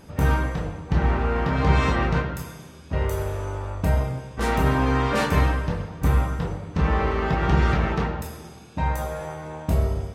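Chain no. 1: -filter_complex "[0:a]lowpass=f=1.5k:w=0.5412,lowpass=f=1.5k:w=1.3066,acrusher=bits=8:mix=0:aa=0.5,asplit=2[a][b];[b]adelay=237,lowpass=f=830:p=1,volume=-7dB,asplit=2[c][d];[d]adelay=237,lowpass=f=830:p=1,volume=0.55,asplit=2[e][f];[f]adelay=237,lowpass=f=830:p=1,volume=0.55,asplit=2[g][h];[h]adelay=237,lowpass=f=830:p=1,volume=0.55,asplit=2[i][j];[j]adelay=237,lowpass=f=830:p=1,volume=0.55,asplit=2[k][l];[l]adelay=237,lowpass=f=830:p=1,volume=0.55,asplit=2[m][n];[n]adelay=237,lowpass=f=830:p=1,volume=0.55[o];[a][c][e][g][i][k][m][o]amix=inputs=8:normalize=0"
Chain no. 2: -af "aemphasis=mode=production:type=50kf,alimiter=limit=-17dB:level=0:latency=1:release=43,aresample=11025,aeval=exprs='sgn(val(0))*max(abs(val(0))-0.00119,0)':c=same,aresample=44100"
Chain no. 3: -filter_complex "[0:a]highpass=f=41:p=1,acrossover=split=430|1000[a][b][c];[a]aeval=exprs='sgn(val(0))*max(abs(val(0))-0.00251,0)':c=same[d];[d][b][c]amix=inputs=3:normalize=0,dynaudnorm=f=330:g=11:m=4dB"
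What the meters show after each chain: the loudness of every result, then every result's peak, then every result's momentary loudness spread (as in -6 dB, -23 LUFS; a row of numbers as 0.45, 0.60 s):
-24.0, -28.0, -22.0 LUFS; -7.0, -17.0, -4.5 dBFS; 9, 7, 13 LU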